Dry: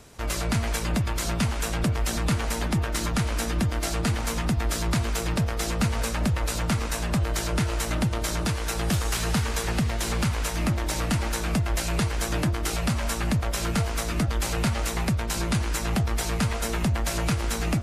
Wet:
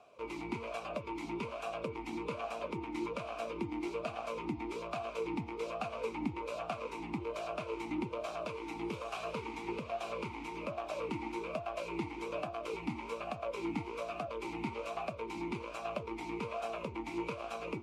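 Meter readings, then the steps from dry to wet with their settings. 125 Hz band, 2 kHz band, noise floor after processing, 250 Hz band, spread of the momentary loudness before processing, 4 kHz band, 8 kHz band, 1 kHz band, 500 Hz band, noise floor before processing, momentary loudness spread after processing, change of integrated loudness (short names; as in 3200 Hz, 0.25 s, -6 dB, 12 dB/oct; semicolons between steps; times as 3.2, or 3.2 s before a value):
-23.0 dB, -13.0 dB, -46 dBFS, -11.5 dB, 1 LU, -18.0 dB, -27.5 dB, -7.5 dB, -5.0 dB, -30 dBFS, 3 LU, -13.0 dB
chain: vowel sweep a-u 1.2 Hz; gain +3 dB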